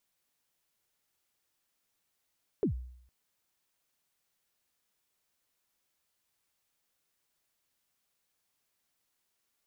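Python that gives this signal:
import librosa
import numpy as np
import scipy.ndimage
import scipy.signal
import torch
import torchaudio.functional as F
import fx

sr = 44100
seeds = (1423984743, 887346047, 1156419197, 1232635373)

y = fx.drum_kick(sr, seeds[0], length_s=0.46, level_db=-23, start_hz=470.0, end_hz=62.0, sweep_ms=105.0, decay_s=0.69, click=False)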